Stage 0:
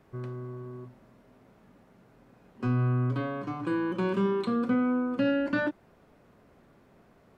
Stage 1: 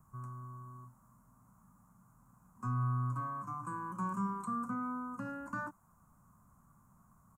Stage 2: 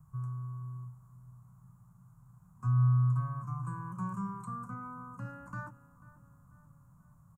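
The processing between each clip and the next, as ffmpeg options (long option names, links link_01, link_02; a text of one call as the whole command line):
ffmpeg -i in.wav -filter_complex "[0:a]firequalizer=gain_entry='entry(190,0);entry(300,-13);entry(420,-20);entry(1100,10);entry(1800,-13);entry(3500,-27);entry(6900,13)':delay=0.05:min_phase=1,acrossover=split=250|770[link_01][link_02][link_03];[link_01]acompressor=mode=upward:threshold=-52dB:ratio=2.5[link_04];[link_04][link_02][link_03]amix=inputs=3:normalize=0,volume=-7dB" out.wav
ffmpeg -i in.wav -filter_complex "[0:a]lowshelf=frequency=190:width_type=q:width=3:gain=7.5,asplit=2[link_01][link_02];[link_02]adelay=490,lowpass=frequency=2000:poles=1,volume=-17.5dB,asplit=2[link_03][link_04];[link_04]adelay=490,lowpass=frequency=2000:poles=1,volume=0.55,asplit=2[link_05][link_06];[link_06]adelay=490,lowpass=frequency=2000:poles=1,volume=0.55,asplit=2[link_07][link_08];[link_08]adelay=490,lowpass=frequency=2000:poles=1,volume=0.55,asplit=2[link_09][link_10];[link_10]adelay=490,lowpass=frequency=2000:poles=1,volume=0.55[link_11];[link_01][link_03][link_05][link_07][link_09][link_11]amix=inputs=6:normalize=0,volume=-3.5dB" out.wav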